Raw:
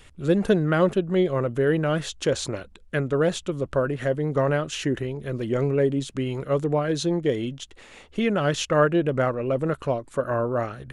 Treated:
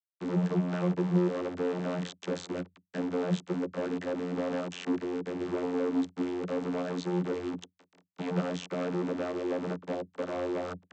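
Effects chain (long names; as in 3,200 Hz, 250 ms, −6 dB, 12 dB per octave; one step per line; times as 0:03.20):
output level in coarse steps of 12 dB
log-companded quantiser 2 bits
channel vocoder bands 32, saw 89.2 Hz
level −3.5 dB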